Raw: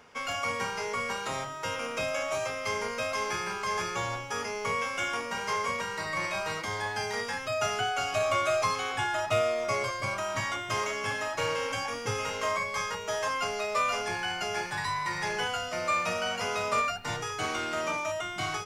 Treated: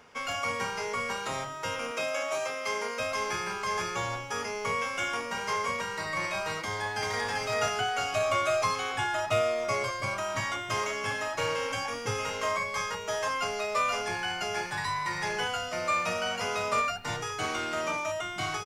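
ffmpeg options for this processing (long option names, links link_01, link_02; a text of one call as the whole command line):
ffmpeg -i in.wav -filter_complex "[0:a]asettb=1/sr,asplit=3[link_01][link_02][link_03];[link_01]atrim=end=1.914[link_04];[link_02]atrim=start=1.91:end=3,asetpts=PTS-STARTPTS,afade=type=in:duration=0.004:curve=qsin,afade=type=out:start_time=1.086:duration=0.004:curve=qsin,highpass=250[link_05];[link_03]atrim=start=2.996[link_06];[link_04][link_05]acrossfade=duration=0.004:curve1=hsin:curve2=qsin[link_07];[link_07][link_06]acrossfade=duration=0.004:curve1=qsin:curve2=hsin,asplit=2[link_08][link_09];[link_09]afade=type=in:start_time=6.62:duration=0.01,afade=type=out:start_time=7.29:duration=0.01,aecho=0:1:390|780|1170|1560:0.794328|0.198582|0.0496455|0.0124114[link_10];[link_08][link_10]amix=inputs=2:normalize=0" out.wav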